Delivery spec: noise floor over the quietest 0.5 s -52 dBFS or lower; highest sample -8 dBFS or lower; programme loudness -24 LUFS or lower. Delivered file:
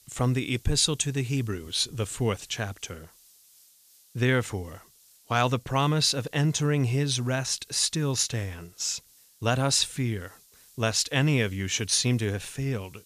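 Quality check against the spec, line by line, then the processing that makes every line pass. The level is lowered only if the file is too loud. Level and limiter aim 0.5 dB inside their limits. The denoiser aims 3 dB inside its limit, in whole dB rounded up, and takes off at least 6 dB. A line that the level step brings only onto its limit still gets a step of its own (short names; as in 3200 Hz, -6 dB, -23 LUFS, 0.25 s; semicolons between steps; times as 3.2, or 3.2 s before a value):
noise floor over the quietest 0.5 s -58 dBFS: OK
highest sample -10.5 dBFS: OK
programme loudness -26.5 LUFS: OK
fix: none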